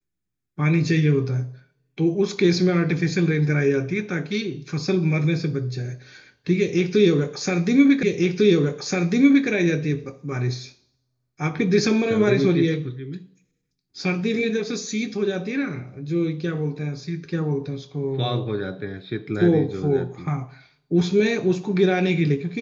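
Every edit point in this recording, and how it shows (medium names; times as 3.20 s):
8.03 s: repeat of the last 1.45 s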